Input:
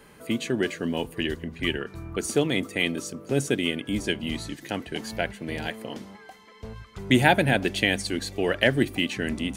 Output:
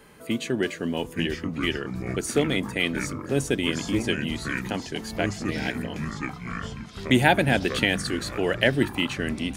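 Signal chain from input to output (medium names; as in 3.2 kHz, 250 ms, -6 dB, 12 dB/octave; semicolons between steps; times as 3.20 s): ever faster or slower copies 771 ms, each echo -5 st, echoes 3, each echo -6 dB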